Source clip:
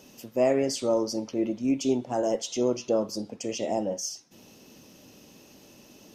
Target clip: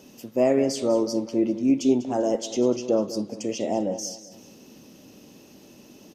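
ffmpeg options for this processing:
ffmpeg -i in.wav -filter_complex "[0:a]equalizer=frequency=270:width=0.76:gain=5,asplit=2[link_01][link_02];[link_02]aecho=0:1:197|394|591:0.178|0.0676|0.0257[link_03];[link_01][link_03]amix=inputs=2:normalize=0" out.wav

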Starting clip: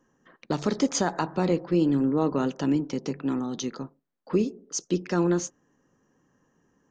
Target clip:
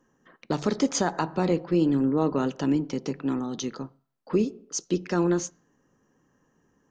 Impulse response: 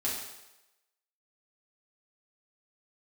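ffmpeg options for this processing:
-filter_complex "[0:a]asplit=2[link_01][link_02];[link_02]asubboost=boost=6.5:cutoff=140[link_03];[1:a]atrim=start_sample=2205,asetrate=74970,aresample=44100,lowpass=3800[link_04];[link_03][link_04]afir=irnorm=-1:irlink=0,volume=-20.5dB[link_05];[link_01][link_05]amix=inputs=2:normalize=0"

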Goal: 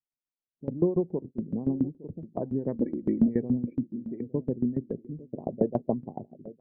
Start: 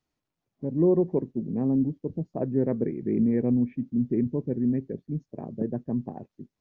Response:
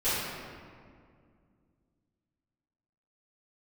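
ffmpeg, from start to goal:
-filter_complex "[0:a]asettb=1/sr,asplit=3[link_01][link_02][link_03];[link_01]atrim=end=5.464[link_04];[link_02]atrim=start=5.46:end=5.94,asetpts=PTS-STARTPTS,afade=type=in:duration=0.004:curve=qsin,afade=type=out:start_time=0.476:duration=0.004:curve=qsin,equalizer=frequency=650:width_type=o:width=1.4:gain=12.5[link_05];[link_03]atrim=start=5.936[link_06];[link_04][link_05]acrossfade=duration=0.004:curve1=hsin:curve2=qsin[link_07];[link_07][link_06]acrossfade=duration=0.004:curve1=qsin:curve2=hsin,asplit=2[link_08][link_09];[link_09]acompressor=threshold=-31dB:ratio=6,volume=-2dB[link_10];[link_08][link_10]amix=inputs=2:normalize=0,asettb=1/sr,asplit=3[link_11][link_12][link_13];[link_11]atrim=end=2.754[link_14];[link_12]atrim=start=2.75:end=3.28,asetpts=PTS-STARTPTS,afade=type=in:duration=0.004:curve=qsin,afade=type=out:start_time=0.526:duration=0.004:curve=qsin,aecho=1:1:3.6:0.83,atrim=end_sample=23373[link_15];[link_13]atrim=start=3.276[link_16];[link_14][link_15]acrossfade=duration=0.004:curve1=hsin:curve2=qsin[link_17];[link_17][link_16]acrossfade=duration=0.004:curve1=qsin:curve2=hsin,asplit=3[link_18][link_19][link_20];[link_18]afade=type=out:start_time=3.91:duration=0.02[link_21];[link_19]aemphasis=mode=production:type=riaa,afade=type=in:start_time=3.91:duration=0.02,afade=type=out:start_time=4.33:duration=0.02[link_22];[link_20]afade=type=in:start_time=4.33:duration=0.02[link_23];[link_21][link_22][link_23]amix=inputs=3:normalize=0,asplit=2[link_24][link_25];[link_25]adelay=861,lowpass=frequency=2000:poles=1,volume=-16.5dB,asplit=2[link_26][link_27];[link_27]adelay=861,lowpass=frequency=2000:poles=1,volume=0.28,asplit=2[link_28][link_29];[link_29]adelay=861,lowpass=frequency=2000:poles=1,volume=0.28[link_30];[link_26][link_28][link_30]amix=inputs=3:normalize=0[link_31];[link_24][link_31]amix=inputs=2:normalize=0,afftdn=noise_reduction=23:noise_floor=-42,aeval=exprs='val(0)*pow(10,-18*if(lt(mod(7.1*n/s,1),2*abs(7.1)/1000),1-mod(7.1*n/s,1)/(2*abs(7.1)/1000),(mod(7.1*n/s,1)-2*abs(7.1)/1000)/(1-2*abs(7.1)/1000))/20)':channel_layout=same"

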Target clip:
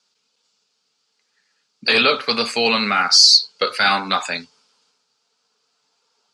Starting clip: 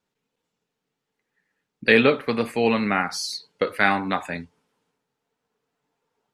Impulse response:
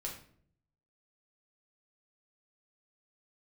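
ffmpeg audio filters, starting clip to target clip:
-af "crystalizer=i=8:c=0,apsyclip=10.5dB,highpass=frequency=140:width=0.5412,highpass=frequency=140:width=1.3066,equalizer=frequency=160:width_type=q:width=4:gain=-8,equalizer=frequency=310:width_type=q:width=4:gain=-8,equalizer=frequency=1300:width_type=q:width=4:gain=5,equalizer=frequency=1900:width_type=q:width=4:gain=-7,equalizer=frequency=4700:width_type=q:width=4:gain=9,lowpass=frequency=6800:width=0.5412,lowpass=frequency=6800:width=1.3066,volume=-9dB"

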